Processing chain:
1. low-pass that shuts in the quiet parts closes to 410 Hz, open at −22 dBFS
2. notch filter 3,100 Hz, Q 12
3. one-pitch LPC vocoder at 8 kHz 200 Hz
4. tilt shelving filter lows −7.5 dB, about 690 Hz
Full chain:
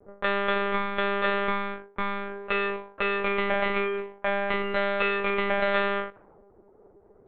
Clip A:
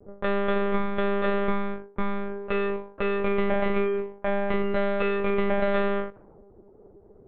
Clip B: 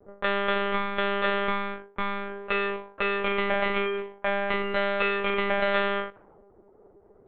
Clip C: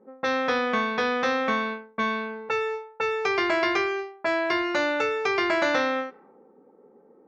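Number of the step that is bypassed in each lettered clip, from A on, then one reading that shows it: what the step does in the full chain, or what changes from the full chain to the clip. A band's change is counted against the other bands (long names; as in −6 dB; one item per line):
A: 4, 4 kHz band −9.5 dB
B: 2, 4 kHz band +2.0 dB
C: 3, 125 Hz band −8.5 dB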